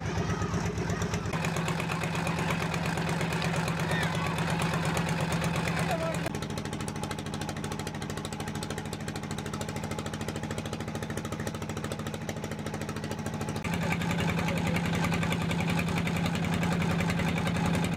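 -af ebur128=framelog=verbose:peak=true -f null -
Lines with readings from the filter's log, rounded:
Integrated loudness:
  I:         -31.0 LUFS
  Threshold: -41.0 LUFS
Loudness range:
  LRA:         6.3 LU
  Threshold: -51.3 LUFS
  LRA low:   -35.1 LUFS
  LRA high:  -28.8 LUFS
True peak:
  Peak:      -14.7 dBFS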